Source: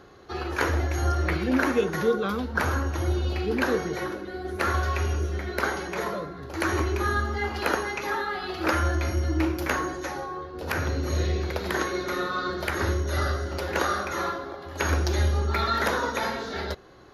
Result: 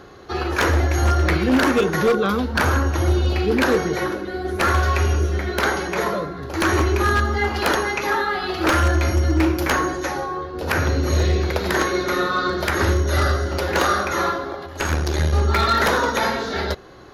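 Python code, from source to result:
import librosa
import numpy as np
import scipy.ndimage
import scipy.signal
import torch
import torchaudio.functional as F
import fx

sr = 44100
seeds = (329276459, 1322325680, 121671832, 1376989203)

y = fx.tube_stage(x, sr, drive_db=19.0, bias=0.8, at=(14.66, 15.33))
y = 10.0 ** (-18.0 / 20.0) * (np.abs((y / 10.0 ** (-18.0 / 20.0) + 3.0) % 4.0 - 2.0) - 1.0)
y = F.gain(torch.from_numpy(y), 7.5).numpy()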